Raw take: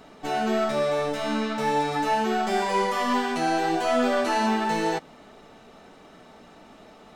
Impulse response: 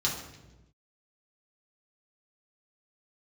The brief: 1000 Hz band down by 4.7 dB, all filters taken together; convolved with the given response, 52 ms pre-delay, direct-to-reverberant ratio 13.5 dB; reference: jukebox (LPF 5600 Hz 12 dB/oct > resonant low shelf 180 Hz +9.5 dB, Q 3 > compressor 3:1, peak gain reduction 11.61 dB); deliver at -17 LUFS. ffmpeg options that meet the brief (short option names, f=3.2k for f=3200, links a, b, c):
-filter_complex "[0:a]equalizer=f=1k:t=o:g=-5.5,asplit=2[a][b];[1:a]atrim=start_sample=2205,adelay=52[c];[b][c]afir=irnorm=-1:irlink=0,volume=-21dB[d];[a][d]amix=inputs=2:normalize=0,lowpass=5.6k,lowshelf=f=180:t=q:w=3:g=9.5,acompressor=threshold=-37dB:ratio=3,volume=20.5dB"